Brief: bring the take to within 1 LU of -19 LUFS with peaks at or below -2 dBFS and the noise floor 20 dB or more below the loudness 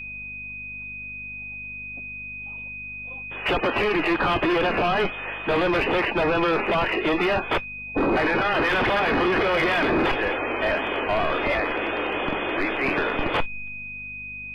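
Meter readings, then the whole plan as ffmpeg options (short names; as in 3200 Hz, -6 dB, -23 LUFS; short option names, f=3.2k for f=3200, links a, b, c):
hum 50 Hz; harmonics up to 250 Hz; hum level -44 dBFS; steady tone 2500 Hz; tone level -33 dBFS; loudness -24.0 LUFS; peak -16.0 dBFS; loudness target -19.0 LUFS
-> -af "bandreject=f=50:t=h:w=4,bandreject=f=100:t=h:w=4,bandreject=f=150:t=h:w=4,bandreject=f=200:t=h:w=4,bandreject=f=250:t=h:w=4"
-af "bandreject=f=2.5k:w=30"
-af "volume=5dB"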